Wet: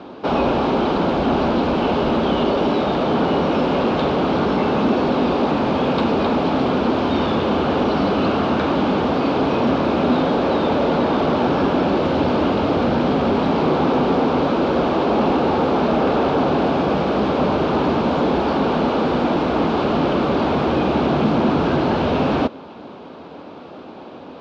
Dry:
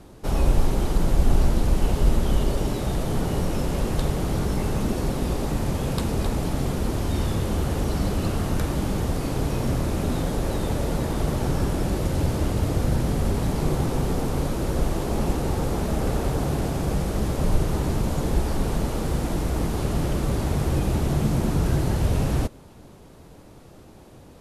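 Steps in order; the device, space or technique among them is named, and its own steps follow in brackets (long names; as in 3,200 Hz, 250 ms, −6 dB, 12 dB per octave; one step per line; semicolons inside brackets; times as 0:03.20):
overdrive pedal into a guitar cabinet (mid-hump overdrive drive 24 dB, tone 2,100 Hz, clips at −5.5 dBFS; loudspeaker in its box 92–4,100 Hz, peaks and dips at 120 Hz −9 dB, 250 Hz +6 dB, 1,900 Hz −9 dB)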